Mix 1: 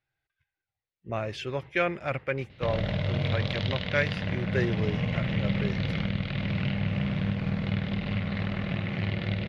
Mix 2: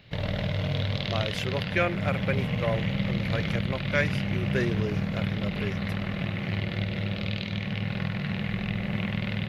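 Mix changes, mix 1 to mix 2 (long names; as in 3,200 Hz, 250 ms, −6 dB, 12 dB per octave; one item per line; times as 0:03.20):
background: entry −2.50 s
master: remove high-frequency loss of the air 78 metres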